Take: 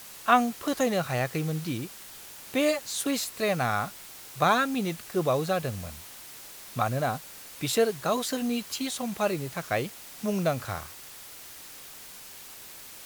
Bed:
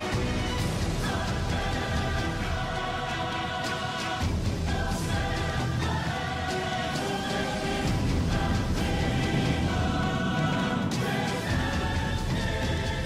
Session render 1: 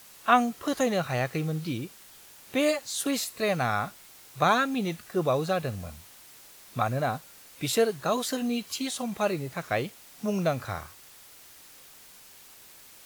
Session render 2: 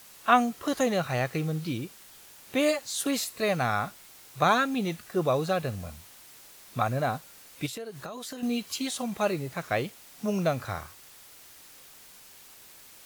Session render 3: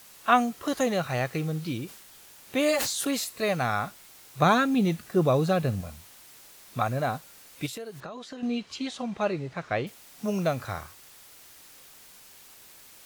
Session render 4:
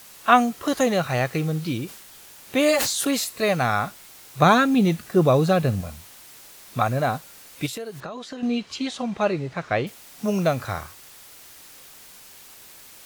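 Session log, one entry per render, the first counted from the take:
noise print and reduce 6 dB
7.66–8.43 s: compression 10:1, threshold -35 dBFS
1.86–3.08 s: decay stretcher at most 41 dB/s; 4.39–5.81 s: peaking EQ 170 Hz +7 dB 2.4 oct; 8.00–9.87 s: distance through air 120 m
trim +5 dB

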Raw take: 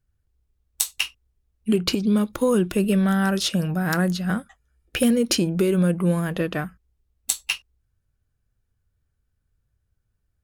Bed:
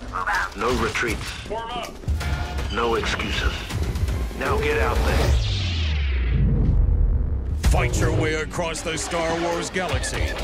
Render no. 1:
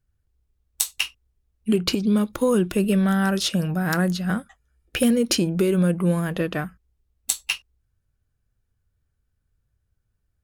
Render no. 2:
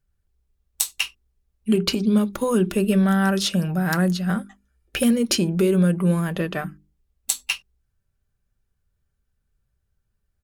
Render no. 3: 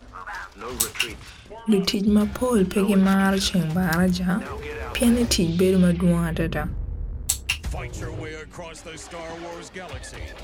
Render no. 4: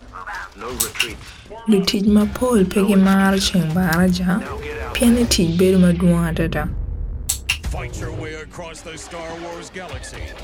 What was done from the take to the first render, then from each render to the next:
no audible change
hum notches 50/100/150/200/250/300/350/400 Hz; comb 5.1 ms, depth 31%
add bed -11.5 dB
trim +4.5 dB; peak limiter -1 dBFS, peak gain reduction 3 dB

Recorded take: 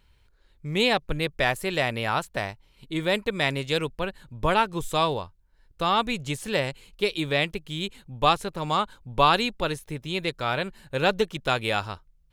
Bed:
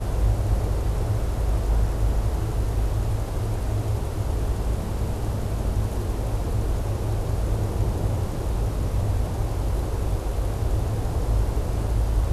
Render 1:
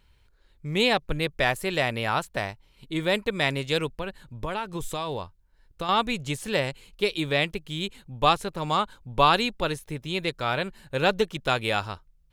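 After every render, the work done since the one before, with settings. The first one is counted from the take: 3.93–5.89 s: compression, threshold -26 dBFS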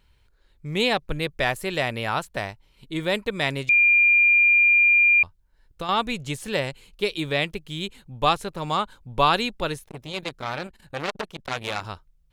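3.69–5.23 s: bleep 2.4 kHz -13.5 dBFS; 9.84–11.85 s: transformer saturation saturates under 2.8 kHz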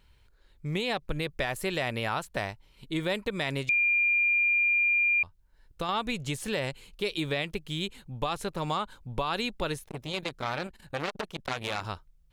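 peak limiter -15.5 dBFS, peak gain reduction 11 dB; compression 2:1, threshold -28 dBFS, peak gain reduction 6 dB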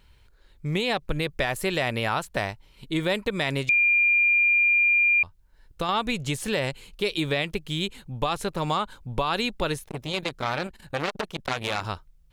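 trim +4.5 dB

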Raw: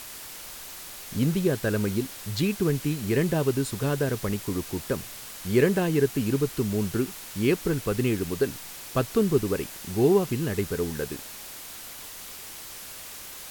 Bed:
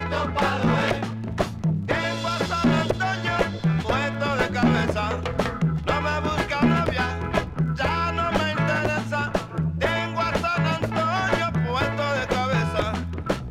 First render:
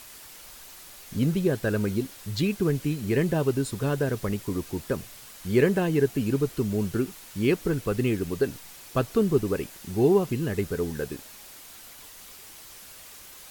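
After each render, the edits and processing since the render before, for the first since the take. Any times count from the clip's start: noise reduction 6 dB, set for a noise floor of -41 dBFS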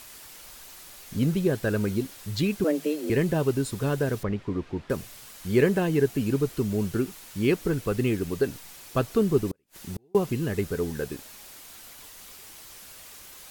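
2.64–3.10 s: frequency shift +150 Hz; 4.23–4.90 s: low-pass 2.6 kHz; 9.51–10.15 s: inverted gate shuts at -21 dBFS, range -41 dB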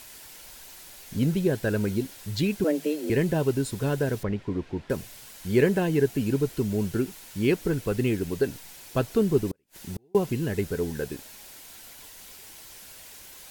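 band-stop 1.2 kHz, Q 7.6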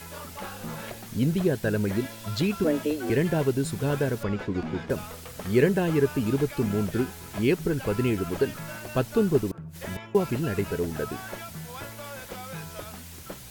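add bed -16 dB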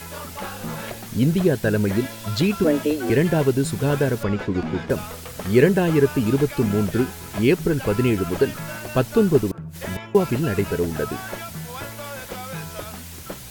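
trim +5.5 dB

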